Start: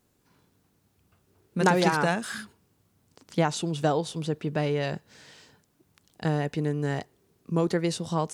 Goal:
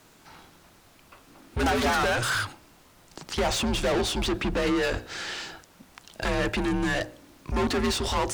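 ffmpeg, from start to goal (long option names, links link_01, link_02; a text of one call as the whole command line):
ffmpeg -i in.wav -filter_complex "[0:a]asplit=2[link_01][link_02];[link_02]highpass=frequency=720:poles=1,volume=36dB,asoftclip=type=tanh:threshold=-8dB[link_03];[link_01][link_03]amix=inputs=2:normalize=0,lowpass=frequency=4000:poles=1,volume=-6dB,bandreject=frequency=59.86:width_type=h:width=4,bandreject=frequency=119.72:width_type=h:width=4,bandreject=frequency=179.58:width_type=h:width=4,bandreject=frequency=239.44:width_type=h:width=4,bandreject=frequency=299.3:width_type=h:width=4,bandreject=frequency=359.16:width_type=h:width=4,bandreject=frequency=419.02:width_type=h:width=4,bandreject=frequency=478.88:width_type=h:width=4,bandreject=frequency=538.74:width_type=h:width=4,bandreject=frequency=598.6:width_type=h:width=4,bandreject=frequency=658.46:width_type=h:width=4,bandreject=frequency=718.32:width_type=h:width=4,bandreject=frequency=778.18:width_type=h:width=4,bandreject=frequency=838.04:width_type=h:width=4,afreqshift=-110,volume=-9dB" out.wav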